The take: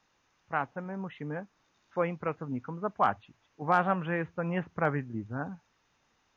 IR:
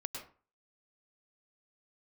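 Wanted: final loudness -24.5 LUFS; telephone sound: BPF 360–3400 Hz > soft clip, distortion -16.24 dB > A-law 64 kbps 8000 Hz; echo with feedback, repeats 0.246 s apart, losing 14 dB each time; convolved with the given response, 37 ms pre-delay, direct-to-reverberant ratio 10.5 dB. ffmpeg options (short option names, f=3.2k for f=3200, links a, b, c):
-filter_complex "[0:a]aecho=1:1:246|492:0.2|0.0399,asplit=2[a][b];[1:a]atrim=start_sample=2205,adelay=37[c];[b][c]afir=irnorm=-1:irlink=0,volume=-10dB[d];[a][d]amix=inputs=2:normalize=0,highpass=360,lowpass=3.4k,asoftclip=threshold=-18dB,volume=10.5dB" -ar 8000 -c:a pcm_alaw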